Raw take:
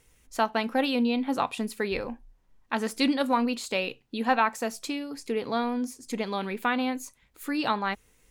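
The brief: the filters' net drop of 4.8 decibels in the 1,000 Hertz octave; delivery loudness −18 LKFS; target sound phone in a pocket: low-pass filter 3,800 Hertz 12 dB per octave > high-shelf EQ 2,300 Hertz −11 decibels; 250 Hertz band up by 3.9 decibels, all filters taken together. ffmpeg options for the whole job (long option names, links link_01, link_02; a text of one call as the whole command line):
ffmpeg -i in.wav -af "lowpass=3800,equalizer=frequency=250:width_type=o:gain=4.5,equalizer=frequency=1000:width_type=o:gain=-4.5,highshelf=frequency=2300:gain=-11,volume=10dB" out.wav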